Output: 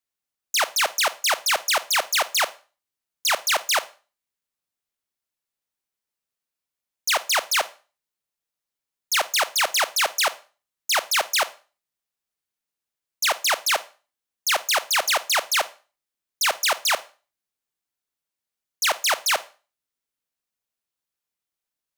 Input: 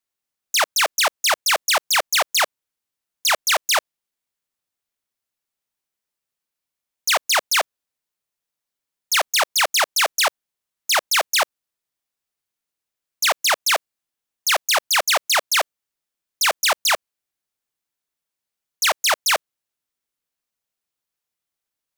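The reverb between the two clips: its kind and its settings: Schroeder reverb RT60 0.34 s, combs from 33 ms, DRR 15.5 dB; trim -3 dB

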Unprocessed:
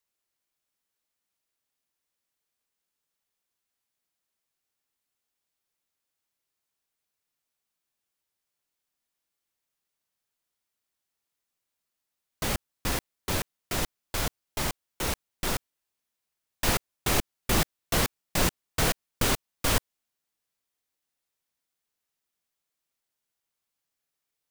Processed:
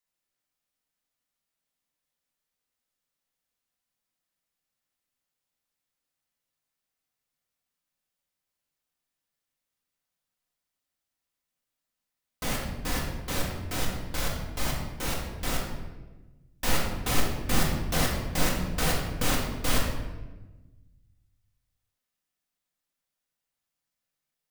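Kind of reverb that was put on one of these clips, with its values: simulated room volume 690 m³, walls mixed, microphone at 2 m; trim -5 dB

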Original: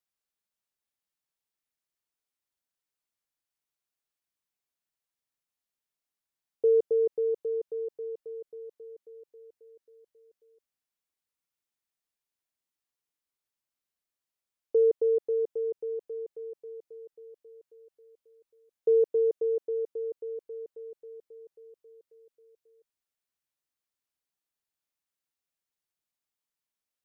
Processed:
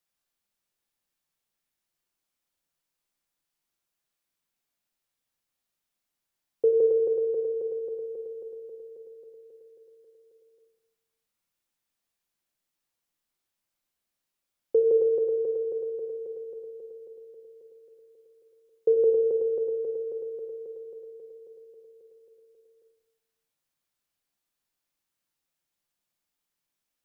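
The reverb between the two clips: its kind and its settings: simulated room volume 280 m³, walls mixed, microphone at 0.83 m; trim +4 dB

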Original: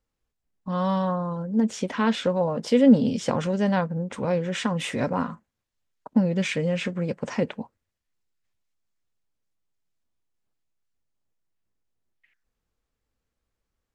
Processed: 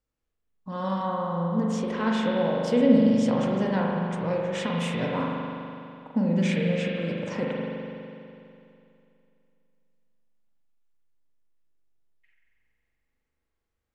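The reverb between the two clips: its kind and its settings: spring tank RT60 2.7 s, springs 41 ms, chirp 40 ms, DRR -2.5 dB; trim -5.5 dB

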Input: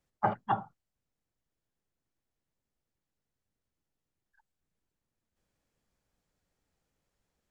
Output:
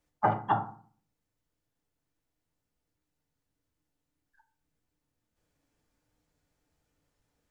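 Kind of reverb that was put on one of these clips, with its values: FDN reverb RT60 0.45 s, low-frequency decay 1.35×, high-frequency decay 0.55×, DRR 3.5 dB; trim +1.5 dB

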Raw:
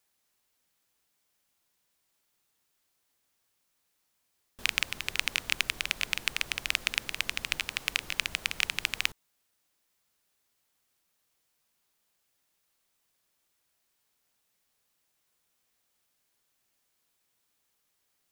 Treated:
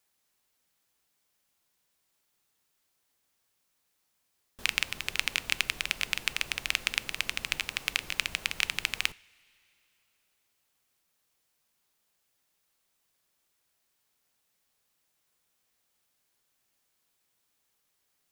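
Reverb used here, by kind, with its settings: two-slope reverb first 0.34 s, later 3.1 s, from -18 dB, DRR 18 dB

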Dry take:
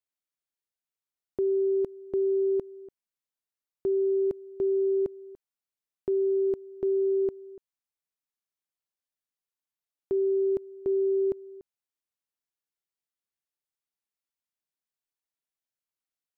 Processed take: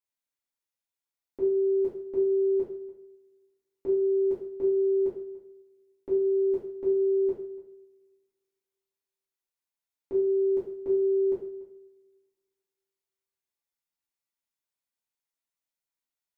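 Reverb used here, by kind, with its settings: two-slope reverb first 0.49 s, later 2 s, from -27 dB, DRR -9.5 dB; trim -9.5 dB

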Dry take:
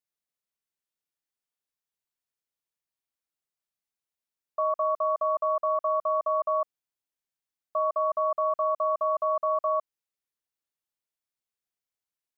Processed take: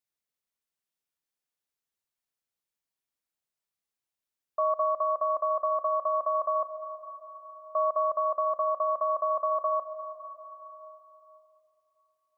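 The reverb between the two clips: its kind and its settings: plate-style reverb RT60 3.5 s, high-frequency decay 0.95×, pre-delay 110 ms, DRR 9.5 dB

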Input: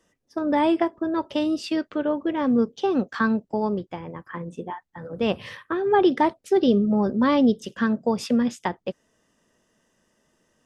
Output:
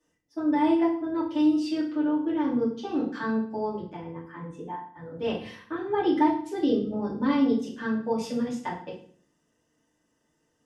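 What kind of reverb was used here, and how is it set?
FDN reverb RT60 0.51 s, low-frequency decay 1.35×, high-frequency decay 0.9×, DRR -7 dB; trim -14 dB

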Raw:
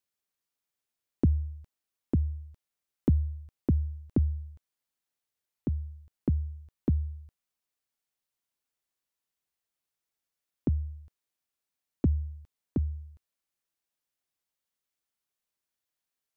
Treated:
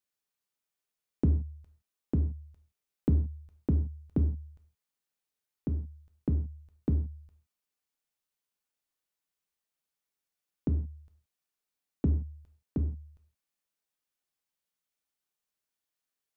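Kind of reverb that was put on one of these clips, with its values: gated-style reverb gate 190 ms falling, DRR 4.5 dB; trim -2.5 dB

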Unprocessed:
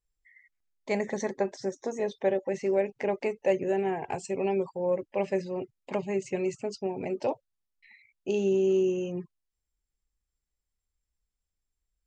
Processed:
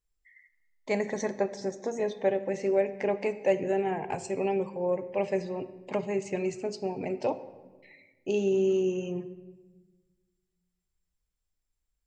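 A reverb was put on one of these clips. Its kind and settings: simulated room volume 920 m³, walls mixed, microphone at 0.44 m

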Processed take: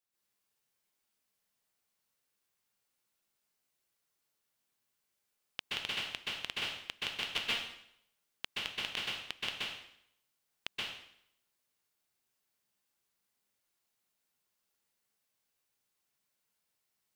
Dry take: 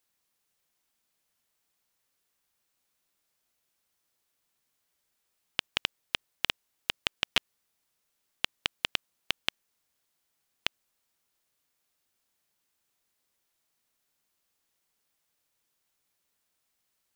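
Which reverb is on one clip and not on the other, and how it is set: plate-style reverb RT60 0.71 s, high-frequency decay 0.95×, pre-delay 115 ms, DRR -7 dB; trim -11.5 dB

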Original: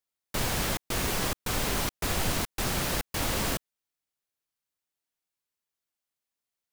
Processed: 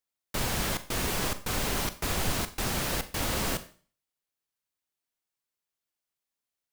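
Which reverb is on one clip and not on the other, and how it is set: Schroeder reverb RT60 0.42 s, combs from 30 ms, DRR 11.5 dB; trim -1 dB

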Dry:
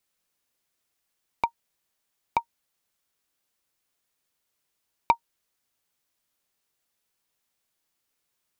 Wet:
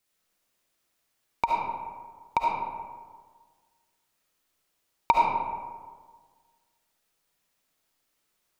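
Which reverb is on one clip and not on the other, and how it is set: algorithmic reverb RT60 1.6 s, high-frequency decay 0.45×, pre-delay 30 ms, DRR -3 dB

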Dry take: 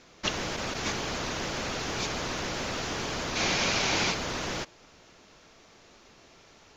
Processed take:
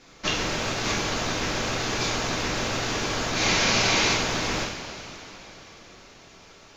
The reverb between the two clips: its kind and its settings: two-slope reverb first 0.59 s, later 4.1 s, from -15 dB, DRR -4 dB

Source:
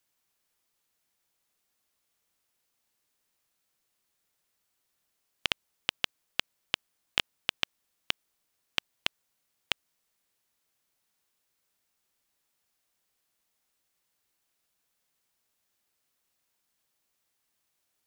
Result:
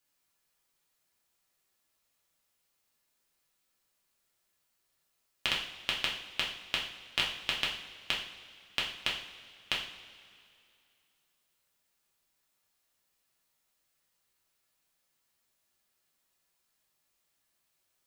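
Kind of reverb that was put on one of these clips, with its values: two-slope reverb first 0.52 s, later 2.5 s, from -16 dB, DRR -4 dB; trim -4.5 dB

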